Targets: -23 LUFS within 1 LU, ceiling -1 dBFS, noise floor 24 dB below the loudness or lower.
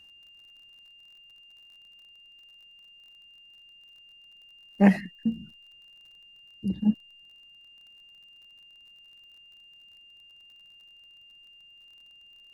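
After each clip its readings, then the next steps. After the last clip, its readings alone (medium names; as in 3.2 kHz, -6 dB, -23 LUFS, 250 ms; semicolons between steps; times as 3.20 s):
tick rate 35 per s; steady tone 2.8 kHz; tone level -51 dBFS; loudness -26.5 LUFS; peak level -5.0 dBFS; loudness target -23.0 LUFS
-> de-click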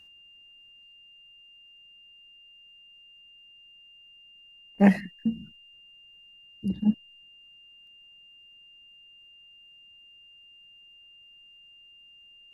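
tick rate 0.080 per s; steady tone 2.8 kHz; tone level -51 dBFS
-> band-stop 2.8 kHz, Q 30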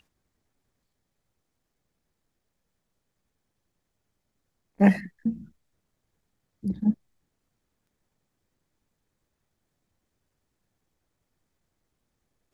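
steady tone not found; loudness -26.0 LUFS; peak level -5.0 dBFS; loudness target -23.0 LUFS
-> trim +3 dB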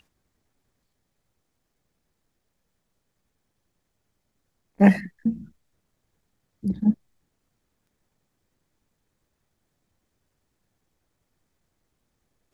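loudness -23.0 LUFS; peak level -2.0 dBFS; noise floor -77 dBFS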